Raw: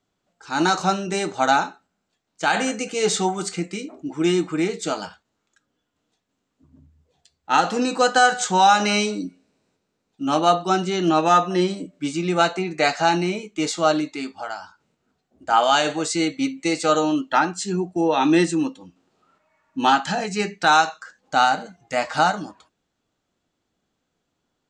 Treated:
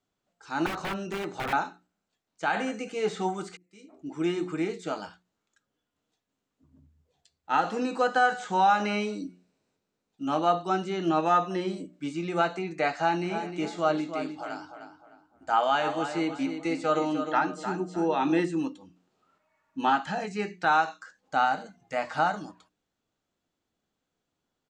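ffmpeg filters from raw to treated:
-filter_complex "[0:a]asettb=1/sr,asplit=3[a][b][c];[a]atrim=end=0.664[d];[b]atrim=start=0.66:end=1.53,asetpts=PTS-STARTPTS,afade=t=in:d=0.004:c=qsin,afade=t=out:st=0.866:d=0.004:c=qsin,aeval=exprs='(mod(6.68*val(0)+1,2)-1)/6.68':c=same[e];[c]atrim=start=1.526[f];[d][e]acrossfade=d=0.004:c1=hsin:c2=qsin[g];[g][f]acrossfade=d=0.004:c1=qsin:c2=hsin,asplit=3[h][i][j];[h]afade=t=out:st=13.22:d=0.02[k];[i]asplit=2[l][m];[m]adelay=305,lowpass=f=2.2k:p=1,volume=-8dB,asplit=2[n][o];[o]adelay=305,lowpass=f=2.2k:p=1,volume=0.35,asplit=2[p][q];[q]adelay=305,lowpass=f=2.2k:p=1,volume=0.35,asplit=2[r][s];[s]adelay=305,lowpass=f=2.2k:p=1,volume=0.35[t];[l][n][p][r][t]amix=inputs=5:normalize=0,afade=t=in:st=13.22:d=0.02,afade=t=out:st=18.39:d=0.02[u];[j]afade=t=in:st=18.39:d=0.02[v];[k][u][v]amix=inputs=3:normalize=0,asplit=2[w][x];[w]atrim=end=3.57,asetpts=PTS-STARTPTS,afade=t=out:st=3.566:d=0.004:c=hsin[y];[x]atrim=start=3.57,asetpts=PTS-STARTPTS,afade=t=in:d=0.51:c=qua[z];[y][z]concat=n=2:v=0:a=1,acrossover=split=2800[aa][ab];[ab]acompressor=threshold=-42dB:ratio=4:attack=1:release=60[ac];[aa][ac]amix=inputs=2:normalize=0,bandreject=f=60:t=h:w=6,bandreject=f=120:t=h:w=6,bandreject=f=180:t=h:w=6,bandreject=f=240:t=h:w=6,bandreject=f=300:t=h:w=6,bandreject=f=360:t=h:w=6,volume=-6.5dB"

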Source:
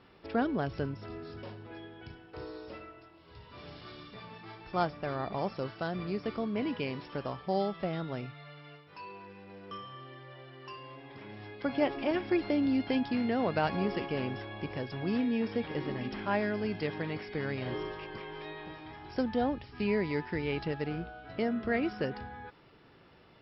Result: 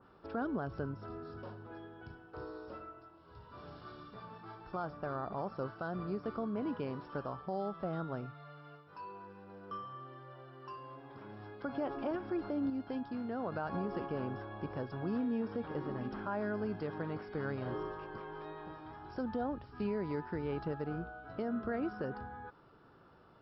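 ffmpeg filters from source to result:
-filter_complex "[0:a]asplit=3[a][b][c];[a]atrim=end=12.702[d];[b]atrim=start=12.698:end=13.522,asetpts=PTS-STARTPTS,volume=-6dB[e];[c]atrim=start=13.518[f];[d][e]acrossfade=d=0.004:c1=hsin:c2=hsin[g];[g][f]acrossfade=d=0.004:c1=hsin:c2=hsin,highshelf=f=1.7k:t=q:w=3:g=-6,alimiter=level_in=1dB:limit=-24dB:level=0:latency=1:release=89,volume=-1dB,adynamicequalizer=threshold=0.00355:dfrequency=2300:dqfactor=0.7:tfrequency=2300:tqfactor=0.7:attack=5:release=100:ratio=0.375:range=2:mode=cutabove:tftype=highshelf,volume=-3dB"

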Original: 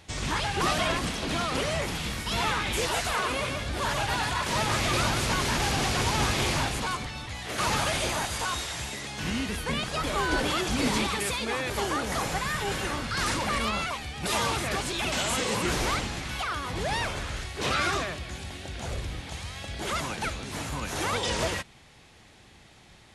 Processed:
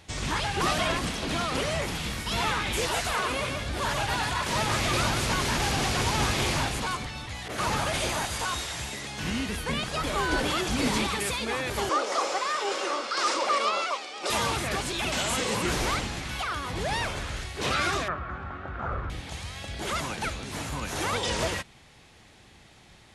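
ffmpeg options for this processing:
-filter_complex "[0:a]asettb=1/sr,asplit=3[a][b][c];[a]atrim=end=7.484[d];[b]atrim=start=7.48:end=7.94,asetpts=PTS-STARTPTS,afade=t=in:d=0.004:c=qsin,afade=t=out:st=0.456:d=0.004:c=qsin,adynamicequalizer=threshold=0.0126:dfrequency=1800:dqfactor=0.7:tfrequency=1800:tqfactor=0.7:attack=5:release=100:ratio=0.375:range=2:mode=cutabove:tftype=highshelf[e];[c]atrim=start=7.936[f];[d][e]acrossfade=d=0.004:c1=hsin:c2=qsin[g];[g][f]acrossfade=d=0.004:c1=qsin:c2=hsin,asettb=1/sr,asplit=3[h][i][j];[h]atrim=end=11.894[k];[i]atrim=start=11.89:end=14.3,asetpts=PTS-STARTPTS,afade=t=in:d=0.004:c=qsin,afade=t=out:st=2.406:d=0.004:c=qsin,highpass=f=340:w=0.5412,highpass=f=340:w=1.3066,equalizer=f=350:t=q:w=4:g=4,equalizer=f=560:t=q:w=4:g=7,equalizer=f=1.2k:t=q:w=4:g=7,equalizer=f=1.7k:t=q:w=4:g=-5,equalizer=f=5.2k:t=q:w=4:g=5,lowpass=f=8.5k:w=0.5412,lowpass=f=8.5k:w=1.3066[l];[j]atrim=start=14.296[m];[k][l]acrossfade=d=0.004:c1=hsin:c2=qsin[n];[n][m]acrossfade=d=0.004:c1=qsin:c2=hsin,asettb=1/sr,asplit=3[o][p][q];[o]atrim=end=18.084[r];[p]atrim=start=18.08:end=19.1,asetpts=PTS-STARTPTS,afade=t=in:d=0.004:c=qsin,afade=t=out:st=1.016:d=0.004:c=qsin,lowpass=f=1.3k:t=q:w=7.6[s];[q]atrim=start=19.096[t];[r][s]acrossfade=d=0.004:c1=hsin:c2=qsin[u];[u][t]acrossfade=d=0.004:c1=qsin:c2=hsin"

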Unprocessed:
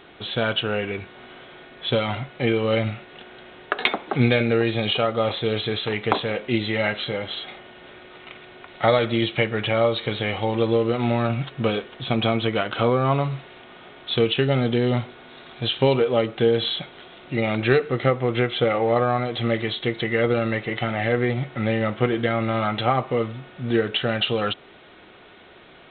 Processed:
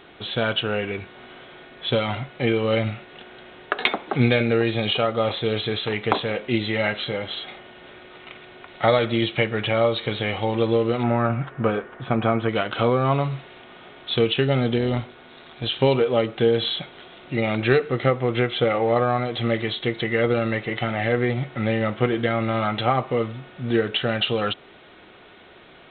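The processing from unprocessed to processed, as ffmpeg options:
-filter_complex "[0:a]asettb=1/sr,asplit=3[a][b][c];[a]atrim=end=11.034[d];[b]atrim=start=11.03:end=12.49,asetpts=PTS-STARTPTS,afade=t=in:d=0.004:c=qsin,afade=t=out:st=1.456:d=0.004:c=qsin,lowpass=f=1.5k:t=q:w=1.6[e];[c]atrim=start=12.486[f];[d][e]acrossfade=d=0.004:c1=hsin:c2=qsin[g];[g][f]acrossfade=d=0.004:c1=qsin:c2=hsin,asplit=3[h][i][j];[h]afade=t=out:st=14.76:d=0.02[k];[i]tremolo=f=160:d=0.4,afade=t=in:st=14.76:d=0.02,afade=t=out:st=15.71:d=0.02[l];[j]afade=t=in:st=15.71:d=0.02[m];[k][l][m]amix=inputs=3:normalize=0"

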